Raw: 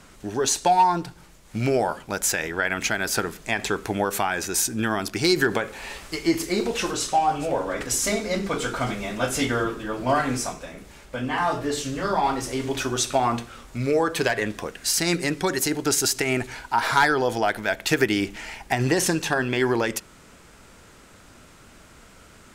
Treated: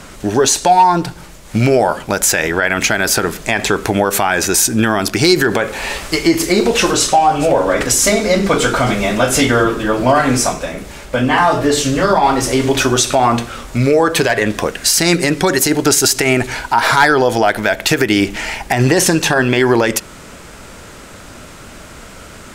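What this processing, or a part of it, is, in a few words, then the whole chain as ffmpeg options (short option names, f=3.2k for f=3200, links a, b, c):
mastering chain: -af "equalizer=f=590:t=o:w=0.32:g=3,acompressor=threshold=-24dB:ratio=2,alimiter=level_in=15dB:limit=-1dB:release=50:level=0:latency=1,volume=-1dB"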